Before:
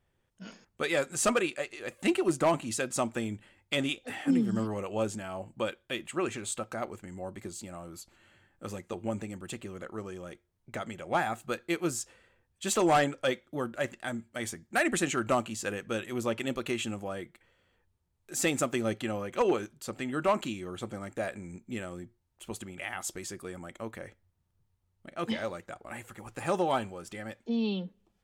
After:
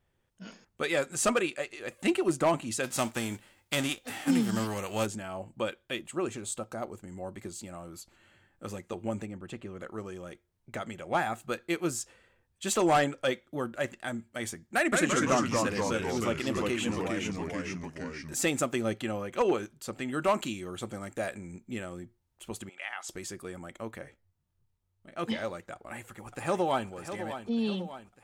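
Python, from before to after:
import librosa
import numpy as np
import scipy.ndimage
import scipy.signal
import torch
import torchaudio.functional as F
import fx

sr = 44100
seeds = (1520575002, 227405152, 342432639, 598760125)

y = fx.envelope_flatten(x, sr, power=0.6, at=(2.83, 5.05), fade=0.02)
y = fx.peak_eq(y, sr, hz=2100.0, db=-7.0, octaves=1.5, at=(5.99, 7.11))
y = fx.lowpass(y, sr, hz=fx.line((9.25, 1500.0), (9.79, 2800.0)), slope=6, at=(9.25, 9.79), fade=0.02)
y = fx.echo_pitch(y, sr, ms=169, semitones=-2, count=3, db_per_echo=-3.0, at=(14.75, 18.34))
y = fx.high_shelf(y, sr, hz=4300.0, db=5.5, at=(20.08, 21.38))
y = fx.bandpass_edges(y, sr, low_hz=780.0, high_hz=5800.0, at=(22.69, 23.09))
y = fx.detune_double(y, sr, cents=fx.line((24.02, 36.0), (25.1, 17.0)), at=(24.02, 25.1), fade=0.02)
y = fx.echo_throw(y, sr, start_s=25.72, length_s=1.16, ms=600, feedback_pct=55, wet_db=-10.5)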